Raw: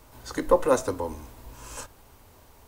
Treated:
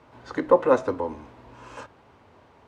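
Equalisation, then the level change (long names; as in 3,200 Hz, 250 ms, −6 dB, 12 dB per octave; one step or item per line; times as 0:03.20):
band-pass filter 120–2,600 Hz
+2.5 dB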